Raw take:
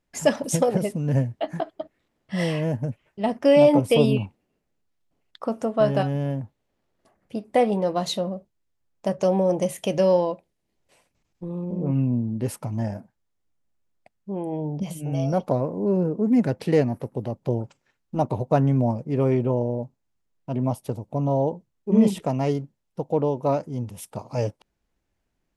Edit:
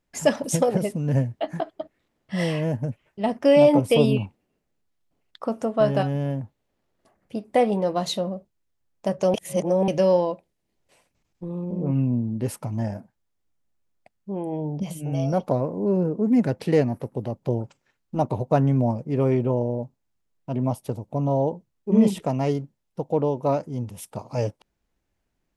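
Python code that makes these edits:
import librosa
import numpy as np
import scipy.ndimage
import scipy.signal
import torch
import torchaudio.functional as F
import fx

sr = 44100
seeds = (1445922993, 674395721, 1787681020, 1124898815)

y = fx.edit(x, sr, fx.reverse_span(start_s=9.34, length_s=0.54), tone=tone)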